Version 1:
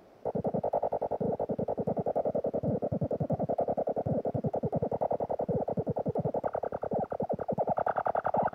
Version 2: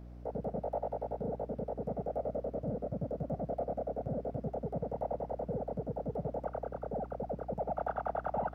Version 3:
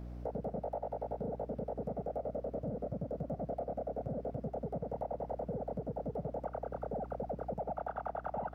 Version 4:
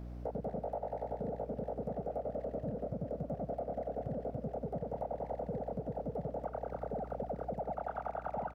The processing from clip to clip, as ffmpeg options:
ffmpeg -i in.wav -af "aeval=exprs='val(0)+0.00891*(sin(2*PI*60*n/s)+sin(2*PI*2*60*n/s)/2+sin(2*PI*3*60*n/s)/3+sin(2*PI*4*60*n/s)/4+sin(2*PI*5*60*n/s)/5)':channel_layout=same,volume=-6dB" out.wav
ffmpeg -i in.wav -af "acompressor=threshold=-39dB:ratio=6,volume=4dB" out.wav
ffmpeg -i in.wav -filter_complex "[0:a]asplit=2[link_01][link_02];[link_02]adelay=240,highpass=300,lowpass=3400,asoftclip=type=hard:threshold=-34.5dB,volume=-12dB[link_03];[link_01][link_03]amix=inputs=2:normalize=0" out.wav

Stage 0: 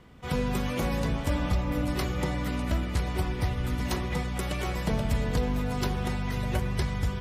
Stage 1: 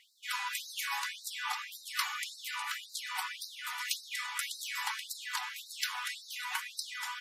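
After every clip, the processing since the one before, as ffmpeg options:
ffmpeg -i in.wav -af "acontrast=88,afftfilt=real='re*gte(b*sr/1024,760*pow(3800/760,0.5+0.5*sin(2*PI*1.8*pts/sr)))':imag='im*gte(b*sr/1024,760*pow(3800/760,0.5+0.5*sin(2*PI*1.8*pts/sr)))':win_size=1024:overlap=0.75,volume=-3.5dB" out.wav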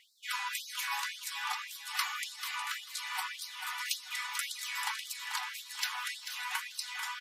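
ffmpeg -i in.wav -af "aecho=1:1:440|880|1320:0.355|0.0639|0.0115" out.wav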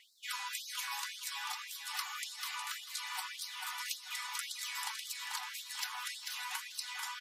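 ffmpeg -i in.wav -filter_complex "[0:a]acrossover=split=1100|3400|7800[link_01][link_02][link_03][link_04];[link_01]acompressor=threshold=-46dB:ratio=4[link_05];[link_02]acompressor=threshold=-48dB:ratio=4[link_06];[link_03]acompressor=threshold=-42dB:ratio=4[link_07];[link_04]acompressor=threshold=-46dB:ratio=4[link_08];[link_05][link_06][link_07][link_08]amix=inputs=4:normalize=0,volume=1dB" out.wav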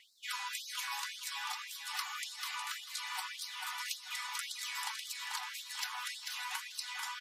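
ffmpeg -i in.wav -af "highshelf=frequency=8800:gain=-4.5,volume=1dB" out.wav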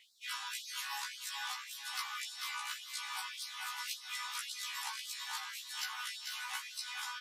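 ffmpeg -i in.wav -af "afftfilt=real='re*1.73*eq(mod(b,3),0)':imag='im*1.73*eq(mod(b,3),0)':win_size=2048:overlap=0.75,volume=1.5dB" out.wav

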